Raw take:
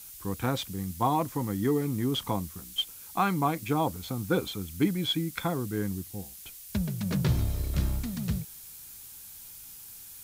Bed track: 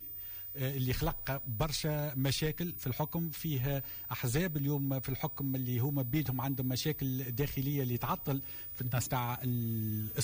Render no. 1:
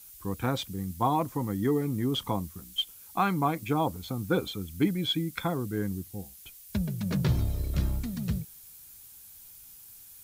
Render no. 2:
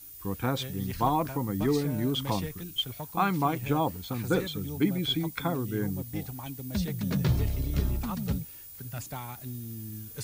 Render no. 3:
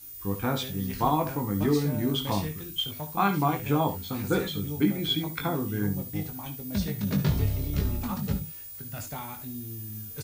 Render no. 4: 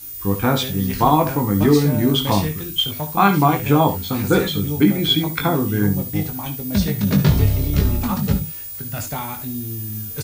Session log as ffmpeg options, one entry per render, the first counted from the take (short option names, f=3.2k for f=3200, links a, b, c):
-af "afftdn=nr=6:nf=-47"
-filter_complex "[1:a]volume=-5dB[a];[0:a][a]amix=inputs=2:normalize=0"
-filter_complex "[0:a]asplit=2[a][b];[b]adelay=20,volume=-5dB[c];[a][c]amix=inputs=2:normalize=0,aecho=1:1:58|70:0.188|0.224"
-af "volume=10dB,alimiter=limit=-3dB:level=0:latency=1"